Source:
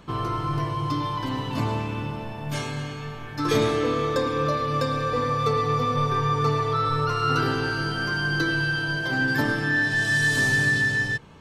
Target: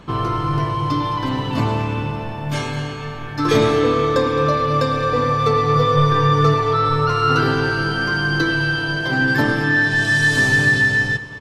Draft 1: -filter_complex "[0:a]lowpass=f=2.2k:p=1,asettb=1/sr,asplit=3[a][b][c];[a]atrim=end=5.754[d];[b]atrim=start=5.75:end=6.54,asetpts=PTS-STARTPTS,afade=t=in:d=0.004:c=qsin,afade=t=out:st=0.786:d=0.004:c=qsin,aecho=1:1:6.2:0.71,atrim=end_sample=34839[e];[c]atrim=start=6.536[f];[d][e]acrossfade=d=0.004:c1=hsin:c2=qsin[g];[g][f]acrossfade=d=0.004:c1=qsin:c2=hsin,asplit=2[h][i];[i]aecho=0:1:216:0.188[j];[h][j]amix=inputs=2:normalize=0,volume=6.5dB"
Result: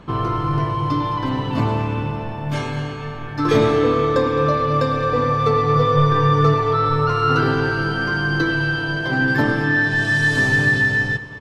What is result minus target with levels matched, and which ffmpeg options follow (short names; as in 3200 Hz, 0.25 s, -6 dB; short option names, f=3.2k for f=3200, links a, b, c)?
4000 Hz band -3.0 dB
-filter_complex "[0:a]lowpass=f=5.6k:p=1,asettb=1/sr,asplit=3[a][b][c];[a]atrim=end=5.754[d];[b]atrim=start=5.75:end=6.54,asetpts=PTS-STARTPTS,afade=t=in:d=0.004:c=qsin,afade=t=out:st=0.786:d=0.004:c=qsin,aecho=1:1:6.2:0.71,atrim=end_sample=34839[e];[c]atrim=start=6.536[f];[d][e]acrossfade=d=0.004:c1=hsin:c2=qsin[g];[g][f]acrossfade=d=0.004:c1=qsin:c2=hsin,asplit=2[h][i];[i]aecho=0:1:216:0.188[j];[h][j]amix=inputs=2:normalize=0,volume=6.5dB"